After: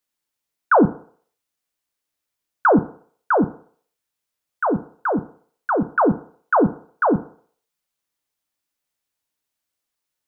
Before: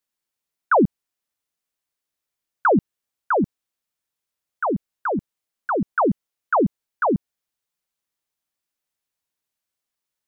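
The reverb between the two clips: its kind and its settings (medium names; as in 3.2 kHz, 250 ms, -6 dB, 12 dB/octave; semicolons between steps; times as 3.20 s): FDN reverb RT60 0.52 s, low-frequency decay 0.75×, high-frequency decay 0.95×, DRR 10.5 dB; trim +2 dB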